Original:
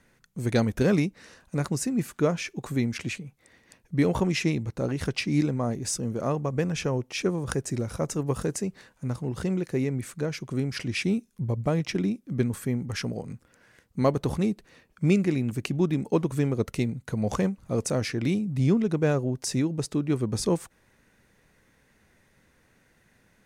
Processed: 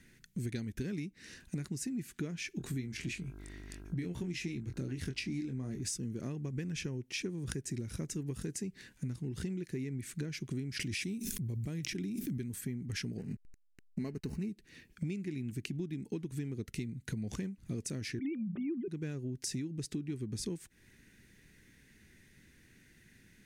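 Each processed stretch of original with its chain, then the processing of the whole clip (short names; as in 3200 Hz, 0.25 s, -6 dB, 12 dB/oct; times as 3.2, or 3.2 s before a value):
2.58–5.81 buzz 50 Hz, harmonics 32, -51 dBFS + doubler 23 ms -7 dB
10.79–12.61 high shelf 7100 Hz +10 dB + backwards sustainer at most 21 dB/s
13.18–14.49 comb 4.6 ms, depth 37% + backlash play -40 dBFS + Butterworth band-stop 3400 Hz, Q 3.7
18.19–18.88 sine-wave speech + notches 50/100/150/200 Hz + small resonant body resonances 370/550/1200 Hz, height 11 dB
whole clip: band shelf 800 Hz -14.5 dB; compressor 16:1, threshold -37 dBFS; gain +2.5 dB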